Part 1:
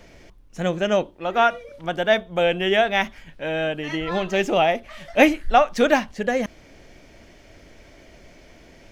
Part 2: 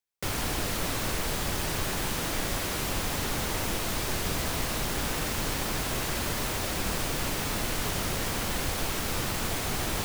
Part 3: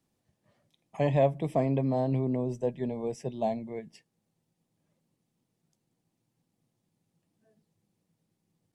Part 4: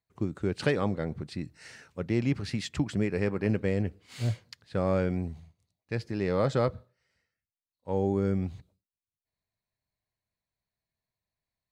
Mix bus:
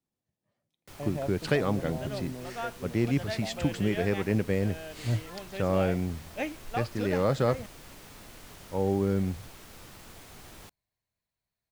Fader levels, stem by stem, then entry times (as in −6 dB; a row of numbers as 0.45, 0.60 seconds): −18.5, −18.5, −11.5, +0.5 decibels; 1.20, 0.65, 0.00, 0.85 seconds